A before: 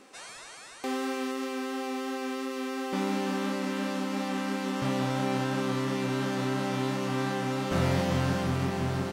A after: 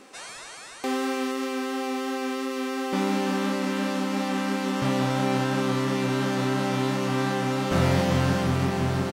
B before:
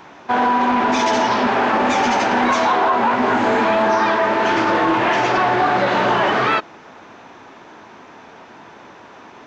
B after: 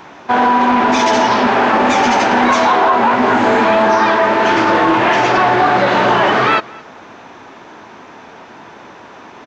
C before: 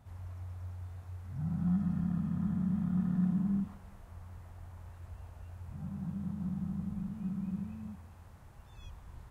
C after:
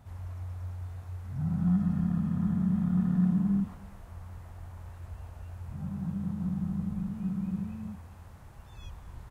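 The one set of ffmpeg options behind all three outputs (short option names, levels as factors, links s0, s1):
-af "aecho=1:1:220:0.0668,volume=1.68"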